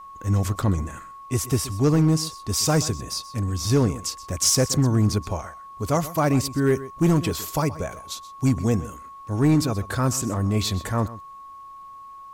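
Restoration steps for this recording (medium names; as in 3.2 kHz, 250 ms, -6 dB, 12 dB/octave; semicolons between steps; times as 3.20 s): clip repair -12.5 dBFS; band-stop 1.1 kHz, Q 30; expander -34 dBFS, range -21 dB; inverse comb 127 ms -16.5 dB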